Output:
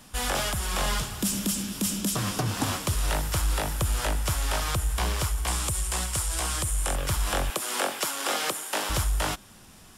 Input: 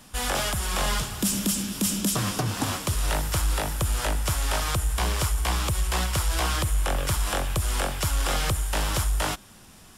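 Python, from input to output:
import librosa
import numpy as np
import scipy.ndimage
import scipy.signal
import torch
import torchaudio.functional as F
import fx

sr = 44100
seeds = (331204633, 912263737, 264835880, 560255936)

y = fx.peak_eq(x, sr, hz=8600.0, db=11.0, octaves=0.9, at=(5.47, 6.96))
y = fx.highpass(y, sr, hz=250.0, slope=24, at=(7.5, 8.9))
y = fx.rider(y, sr, range_db=10, speed_s=0.5)
y = F.gain(torch.from_numpy(y), -2.0).numpy()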